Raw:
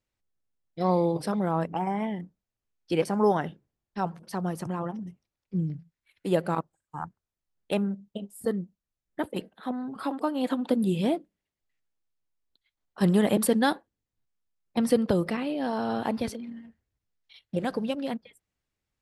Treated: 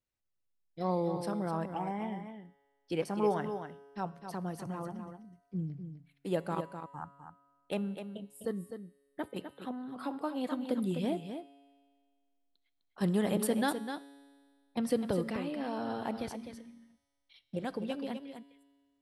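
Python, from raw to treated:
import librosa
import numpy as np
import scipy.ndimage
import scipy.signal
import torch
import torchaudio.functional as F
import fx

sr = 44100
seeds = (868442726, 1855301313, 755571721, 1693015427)

p1 = fx.comb_fb(x, sr, f0_hz=140.0, decay_s=1.8, harmonics='all', damping=0.0, mix_pct=60)
y = p1 + fx.echo_single(p1, sr, ms=254, db=-8.5, dry=0)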